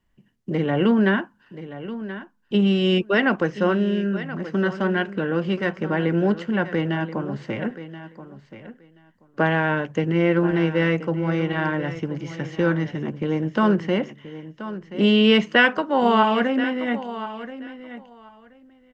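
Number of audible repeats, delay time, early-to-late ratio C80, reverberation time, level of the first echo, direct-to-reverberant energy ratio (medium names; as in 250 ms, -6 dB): 2, 1029 ms, no reverb, no reverb, -13.5 dB, no reverb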